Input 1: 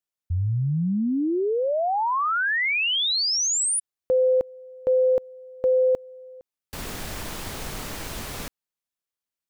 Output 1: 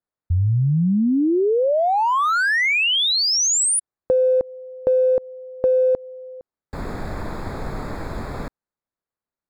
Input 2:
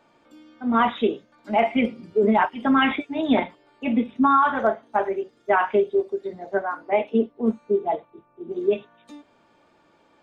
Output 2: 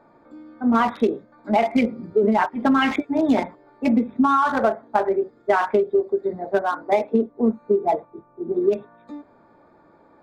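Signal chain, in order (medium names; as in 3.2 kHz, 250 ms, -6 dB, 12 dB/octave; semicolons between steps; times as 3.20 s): local Wiener filter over 15 samples; compression, threshold -22 dBFS; trim +7 dB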